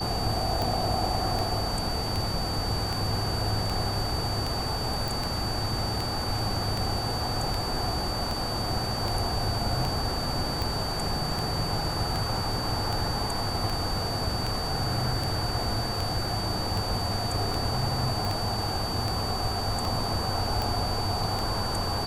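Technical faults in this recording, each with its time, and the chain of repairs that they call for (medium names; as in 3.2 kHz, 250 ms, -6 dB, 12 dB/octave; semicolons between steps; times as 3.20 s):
tick 78 rpm
whine 4.6 kHz -33 dBFS
5.08 s: pop
18.25 s: pop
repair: de-click; band-stop 4.6 kHz, Q 30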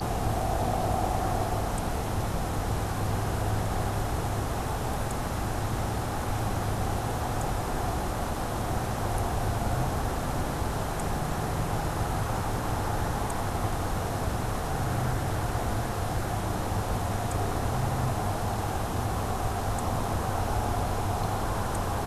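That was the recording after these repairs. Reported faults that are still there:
nothing left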